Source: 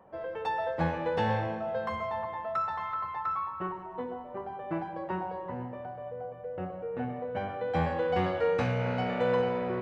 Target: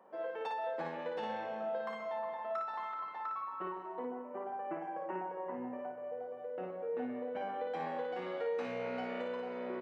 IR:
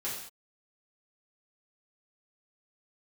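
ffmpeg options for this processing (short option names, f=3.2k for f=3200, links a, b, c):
-filter_complex "[0:a]highpass=f=230:w=0.5412,highpass=f=230:w=1.3066,acompressor=threshold=-34dB:ratio=5,asplit=3[a][b][c];[a]afade=t=out:st=3.98:d=0.02[d];[b]asuperstop=centerf=4000:order=4:qfactor=1.5,afade=t=in:st=3.98:d=0.02,afade=t=out:st=6.15:d=0.02[e];[c]afade=t=in:st=6.15:d=0.02[f];[d][e][f]amix=inputs=3:normalize=0,aecho=1:1:32|56:0.316|0.631,volume=-4dB"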